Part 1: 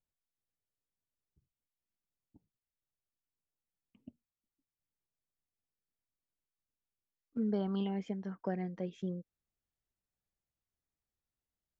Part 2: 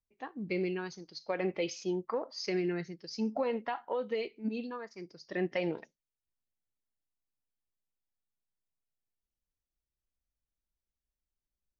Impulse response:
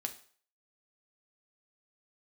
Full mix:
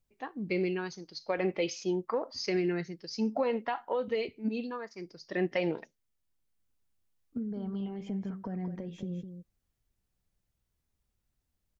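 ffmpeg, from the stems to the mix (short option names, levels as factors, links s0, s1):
-filter_complex "[0:a]alimiter=level_in=3.35:limit=0.0631:level=0:latency=1,volume=0.299,acompressor=threshold=0.00631:ratio=6,lowshelf=f=250:g=11.5,volume=1.19,asplit=3[s0][s1][s2];[s1]volume=0.447[s3];[s2]volume=0.473[s4];[1:a]volume=1.33,asplit=2[s5][s6];[s6]apad=whole_len=520182[s7];[s0][s7]sidechaincompress=threshold=0.00316:ratio=8:attack=16:release=608[s8];[2:a]atrim=start_sample=2205[s9];[s3][s9]afir=irnorm=-1:irlink=0[s10];[s4]aecho=0:1:206:1[s11];[s8][s5][s10][s11]amix=inputs=4:normalize=0"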